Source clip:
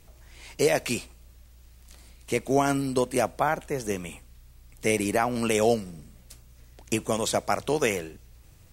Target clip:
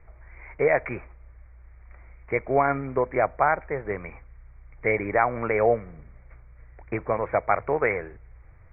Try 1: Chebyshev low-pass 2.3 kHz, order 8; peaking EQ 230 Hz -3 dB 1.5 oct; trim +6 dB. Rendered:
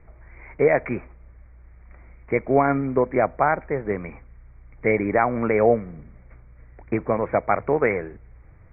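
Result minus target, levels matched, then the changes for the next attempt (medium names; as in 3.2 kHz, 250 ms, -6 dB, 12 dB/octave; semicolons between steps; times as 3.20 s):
250 Hz band +5.5 dB
change: peaking EQ 230 Hz -13 dB 1.5 oct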